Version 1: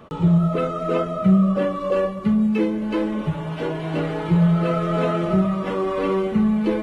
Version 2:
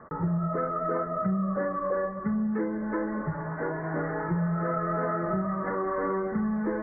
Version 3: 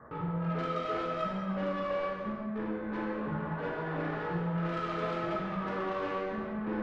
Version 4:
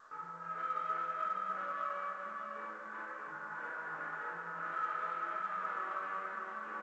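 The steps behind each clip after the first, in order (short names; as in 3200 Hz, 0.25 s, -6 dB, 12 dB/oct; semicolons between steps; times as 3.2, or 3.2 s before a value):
steep low-pass 1900 Hz 96 dB/oct; tilt shelf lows -7 dB, about 1200 Hz; compressor 4:1, threshold -25 dBFS, peak gain reduction 6.5 dB
soft clip -29 dBFS, distortion -12 dB; resonator 390 Hz, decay 0.61 s; non-linear reverb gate 0.47 s falling, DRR -4.5 dB; gain +2 dB
band-pass 1400 Hz, Q 3.4; feedback echo 0.603 s, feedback 36%, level -4 dB; gain +1 dB; A-law 128 kbps 16000 Hz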